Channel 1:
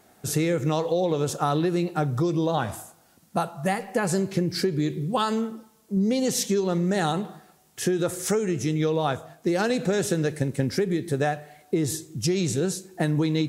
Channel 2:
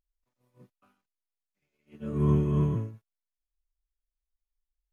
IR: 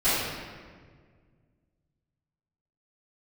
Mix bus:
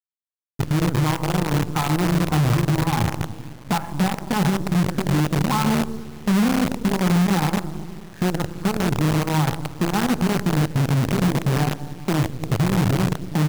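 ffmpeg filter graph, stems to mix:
-filter_complex "[0:a]aemphasis=mode=reproduction:type=riaa,adelay=350,volume=-0.5dB,asplit=2[link_01][link_02];[link_02]volume=-21.5dB[link_03];[1:a]equalizer=frequency=2200:width=1:gain=-12.5,bandreject=frequency=50:width_type=h:width=6,bandreject=frequency=100:width_type=h:width=6,bandreject=frequency=150:width_type=h:width=6,bandreject=frequency=200:width_type=h:width=6,bandreject=frequency=250:width_type=h:width=6,bandreject=frequency=300:width_type=h:width=6,bandreject=frequency=350:width_type=h:width=6,volume=-5.5dB,asplit=2[link_04][link_05];[link_05]volume=-15dB[link_06];[2:a]atrim=start_sample=2205[link_07];[link_03][link_06]amix=inputs=2:normalize=0[link_08];[link_08][link_07]afir=irnorm=-1:irlink=0[link_09];[link_01][link_04][link_09]amix=inputs=3:normalize=0,firequalizer=gain_entry='entry(230,0);entry(330,-5);entry(590,-20);entry(840,7);entry(3300,-28)':delay=0.05:min_phase=1,acrusher=bits=4:dc=4:mix=0:aa=0.000001,alimiter=limit=-13dB:level=0:latency=1:release=61"

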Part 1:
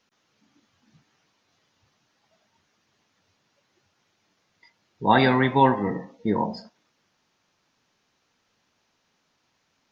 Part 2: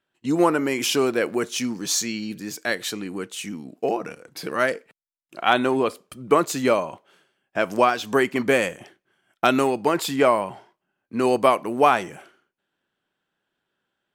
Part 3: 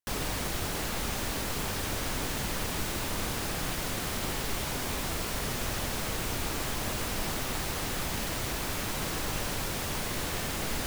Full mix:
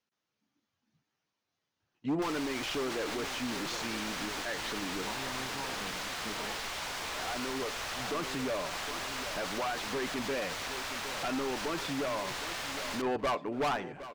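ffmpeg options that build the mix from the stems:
ffmpeg -i stem1.wav -i stem2.wav -i stem3.wav -filter_complex "[0:a]acompressor=threshold=-22dB:ratio=6,volume=-16.5dB,asplit=2[link_01][link_02];[1:a]lowpass=2900,aecho=1:1:6.9:0.32,volume=19.5dB,asoftclip=hard,volume=-19.5dB,adelay=1800,volume=-7.5dB,asplit=2[link_03][link_04];[link_04]volume=-14.5dB[link_05];[2:a]acrossover=split=590 6900:gain=0.158 1 0.224[link_06][link_07][link_08];[link_06][link_07][link_08]amix=inputs=3:normalize=0,adelay=2150,volume=-0.5dB[link_09];[link_02]apad=whole_len=703467[link_10];[link_03][link_10]sidechaincompress=threshold=-55dB:ratio=8:attack=16:release=1330[link_11];[link_05]aecho=0:1:763|1526|2289|3052|3815|4578:1|0.46|0.212|0.0973|0.0448|0.0206[link_12];[link_01][link_11][link_09][link_12]amix=inputs=4:normalize=0,alimiter=level_in=2.5dB:limit=-24dB:level=0:latency=1:release=19,volume=-2.5dB" out.wav

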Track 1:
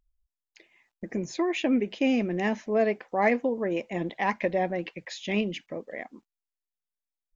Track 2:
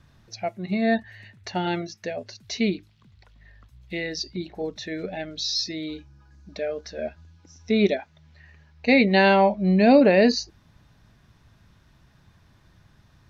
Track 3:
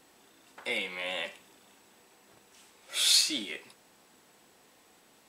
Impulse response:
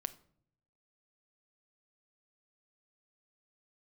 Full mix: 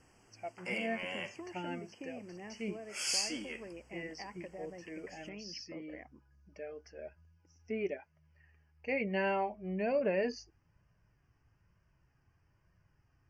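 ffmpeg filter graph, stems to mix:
-filter_complex "[0:a]acompressor=threshold=-33dB:ratio=6,volume=-11.5dB[link_01];[1:a]flanger=delay=1.7:depth=1:regen=-45:speed=1.1:shape=triangular,volume=-11dB[link_02];[2:a]bass=frequency=250:gain=4,treble=frequency=4000:gain=5,volume=-5.5dB[link_03];[link_01][link_02][link_03]amix=inputs=3:normalize=0,asuperstop=centerf=3800:order=8:qfactor=2.4,lowpass=5800"

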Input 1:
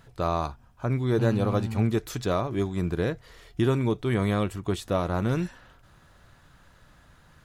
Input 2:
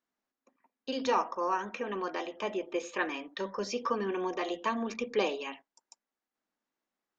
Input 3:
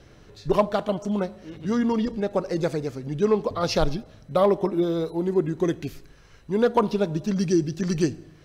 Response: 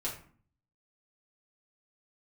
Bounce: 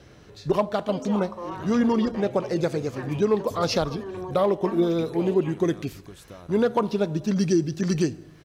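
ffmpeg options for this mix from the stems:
-filter_complex "[0:a]highshelf=frequency=7100:gain=11,acompressor=threshold=-30dB:ratio=6,adelay=1400,volume=-10.5dB[link_01];[1:a]equalizer=frequency=520:width_type=o:width=2.9:gain=8.5,alimiter=limit=-18.5dB:level=0:latency=1,volume=-8dB[link_02];[2:a]highpass=55,volume=1.5dB[link_03];[link_01][link_02][link_03]amix=inputs=3:normalize=0,alimiter=limit=-12dB:level=0:latency=1:release=365"

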